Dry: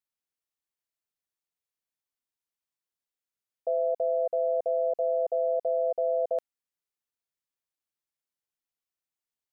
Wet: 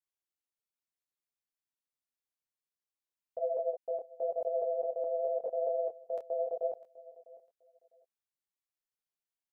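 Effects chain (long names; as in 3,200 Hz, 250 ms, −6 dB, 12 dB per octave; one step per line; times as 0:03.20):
slices reordered back to front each 210 ms, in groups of 4
repeating echo 652 ms, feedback 21%, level −19.5 dB
micro pitch shift up and down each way 31 cents
level −2.5 dB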